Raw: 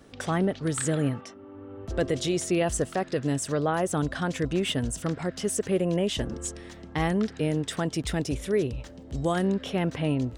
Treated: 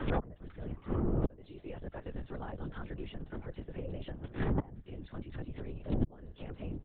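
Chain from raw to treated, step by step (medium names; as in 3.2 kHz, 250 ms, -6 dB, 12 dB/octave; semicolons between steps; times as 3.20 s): octave divider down 2 oct, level +4 dB; comb 3.5 ms, depth 62%; granular stretch 0.66×, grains 104 ms; inverted gate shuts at -22 dBFS, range -37 dB; low-pass that closes with the level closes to 1.1 kHz, closed at -37 dBFS; LPC vocoder at 8 kHz whisper; three bands compressed up and down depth 70%; trim +10 dB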